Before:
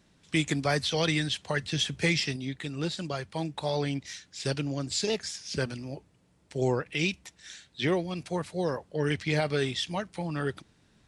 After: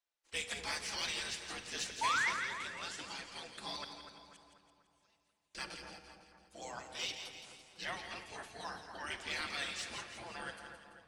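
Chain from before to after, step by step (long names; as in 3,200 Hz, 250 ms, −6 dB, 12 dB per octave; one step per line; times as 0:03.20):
noise gate −58 dBFS, range −22 dB
gate on every frequency bin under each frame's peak −15 dB weak
in parallel at −6 dB: soft clipping −36.5 dBFS, distortion −9 dB
on the sum: flanger 0.22 Hz, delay 3.1 ms, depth 4.9 ms, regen −50%
0:02.01–0:02.30: sound drawn into the spectrogram rise 860–2,300 Hz −31 dBFS
0:03.84–0:05.55: gate with flip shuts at −44 dBFS, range −36 dB
on a send: echo with a time of its own for lows and highs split 1,700 Hz, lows 245 ms, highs 168 ms, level −8 dB
on the sum: rectangular room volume 2,500 cubic metres, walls mixed, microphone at 0.78 metres
level −2 dB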